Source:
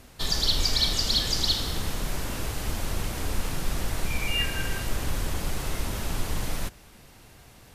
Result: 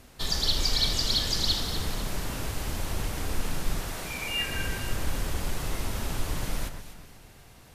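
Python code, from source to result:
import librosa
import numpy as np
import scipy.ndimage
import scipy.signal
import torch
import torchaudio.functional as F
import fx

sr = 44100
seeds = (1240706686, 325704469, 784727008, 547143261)

y = fx.low_shelf(x, sr, hz=150.0, db=-11.5, at=(3.79, 4.49))
y = fx.echo_alternate(y, sr, ms=123, hz=2100.0, feedback_pct=60, wet_db=-7.0)
y = y * librosa.db_to_amplitude(-2.0)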